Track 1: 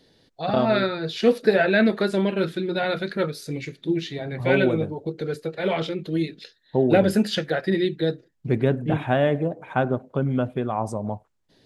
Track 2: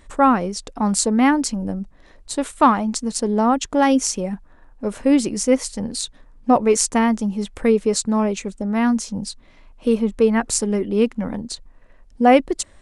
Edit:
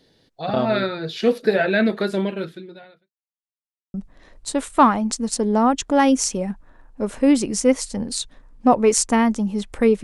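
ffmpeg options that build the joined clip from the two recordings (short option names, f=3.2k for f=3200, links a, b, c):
-filter_complex "[0:a]apad=whole_dur=10.03,atrim=end=10.03,asplit=2[a][b];[a]atrim=end=3.12,asetpts=PTS-STARTPTS,afade=t=out:st=2.2:d=0.92:c=qua[c];[b]atrim=start=3.12:end=3.94,asetpts=PTS-STARTPTS,volume=0[d];[1:a]atrim=start=1.77:end=7.86,asetpts=PTS-STARTPTS,afade=t=in:d=0.004:c=hsin[e];[c][d][e]concat=n=3:v=0:a=1"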